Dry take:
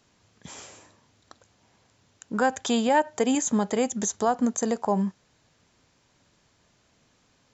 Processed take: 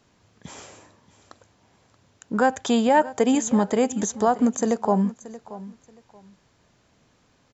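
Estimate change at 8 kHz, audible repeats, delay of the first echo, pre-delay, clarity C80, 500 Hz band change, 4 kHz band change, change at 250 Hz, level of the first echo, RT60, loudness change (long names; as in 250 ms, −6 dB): can't be measured, 2, 629 ms, no reverb audible, no reverb audible, +4.0 dB, 0.0 dB, +4.0 dB, −17.0 dB, no reverb audible, +3.5 dB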